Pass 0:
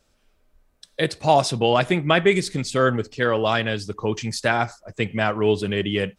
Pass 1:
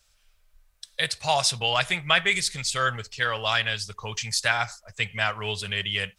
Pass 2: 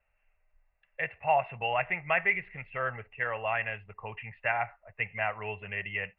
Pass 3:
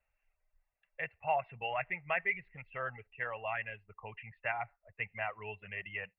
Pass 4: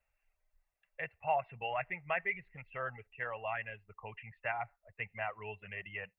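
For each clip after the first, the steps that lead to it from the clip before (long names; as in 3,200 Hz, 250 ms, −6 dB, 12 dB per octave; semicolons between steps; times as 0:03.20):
guitar amp tone stack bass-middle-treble 10-0-10; level +5.5 dB
Chebyshev low-pass with heavy ripple 2,800 Hz, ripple 9 dB
reverb reduction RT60 0.69 s; level −6 dB
dynamic equaliser 2,300 Hz, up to −3 dB, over −48 dBFS, Q 1.6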